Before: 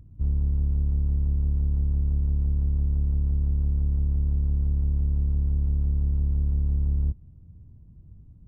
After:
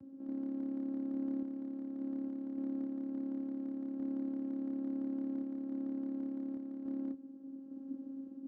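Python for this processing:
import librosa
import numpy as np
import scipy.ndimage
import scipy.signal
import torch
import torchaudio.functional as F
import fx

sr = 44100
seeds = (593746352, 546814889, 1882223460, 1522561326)

p1 = fx.vocoder(x, sr, bands=8, carrier='saw', carrier_hz=270.0)
p2 = fx.over_compress(p1, sr, threshold_db=-48.0, ratio=-1.0)
p3 = p1 + (p2 * 10.0 ** (1.0 / 20.0))
p4 = np.clip(p3, -10.0 ** (-28.0 / 20.0), 10.0 ** (-28.0 / 20.0))
p5 = fx.tremolo_random(p4, sr, seeds[0], hz=3.5, depth_pct=55)
y = p5 * 10.0 ** (-1.5 / 20.0)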